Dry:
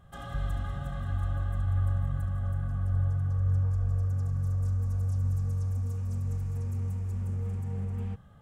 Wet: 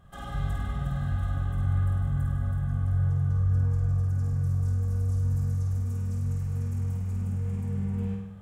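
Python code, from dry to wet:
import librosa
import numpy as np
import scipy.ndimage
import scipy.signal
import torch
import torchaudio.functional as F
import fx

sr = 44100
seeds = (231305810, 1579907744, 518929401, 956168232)

y = fx.doubler(x, sr, ms=21.0, db=-8.0)
y = fx.room_flutter(y, sr, wall_m=8.7, rt60_s=0.82)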